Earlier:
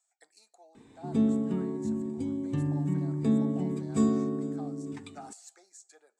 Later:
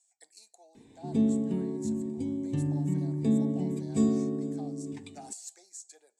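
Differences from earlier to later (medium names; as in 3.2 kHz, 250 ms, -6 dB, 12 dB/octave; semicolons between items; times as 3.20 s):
speech: add treble shelf 4 kHz +9.5 dB; master: add peaking EQ 1.3 kHz -14.5 dB 0.53 oct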